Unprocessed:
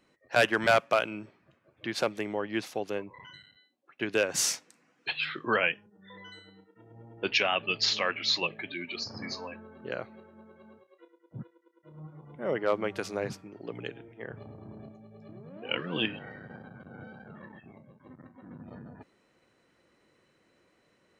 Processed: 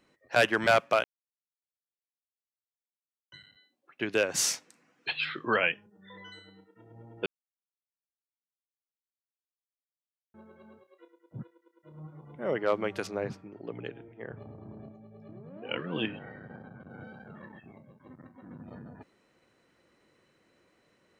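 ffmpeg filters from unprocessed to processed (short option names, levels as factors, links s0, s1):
-filter_complex "[0:a]asettb=1/sr,asplit=3[s0][s1][s2];[s0]atrim=end=13.074[s3];[s1]atrim=start=13.07:end=16.9,asetpts=PTS-STARTPTS,afade=t=in:d=0.004:c=qsin,afade=t=out:st=3.826:d=0.004:c=qsin,lowpass=f=1900:p=1[s4];[s2]atrim=start=16.896[s5];[s3][s4]acrossfade=d=0.004:c1=hsin:c2=qsin[s6];[s6][s5]acrossfade=d=0.004:c1=qsin:c2=hsin,asplit=5[s7][s8][s9][s10][s11];[s7]atrim=end=1.04,asetpts=PTS-STARTPTS,afade=t=out:st=1.036:d=0.004:c=hsin[s12];[s8]atrim=start=1.04:end=3.32,asetpts=PTS-STARTPTS,volume=0[s13];[s9]atrim=start=3.32:end=7.26,asetpts=PTS-STARTPTS,afade=t=in:d=0.004:c=hsin,afade=t=out:st=3.936:d=0.004:c=hsin[s14];[s10]atrim=start=7.26:end=10.34,asetpts=PTS-STARTPTS,volume=0[s15];[s11]atrim=start=10.34,asetpts=PTS-STARTPTS,afade=t=in:d=0.004:c=hsin[s16];[s12][s13][s14][s15][s16]concat=n=5:v=0:a=1"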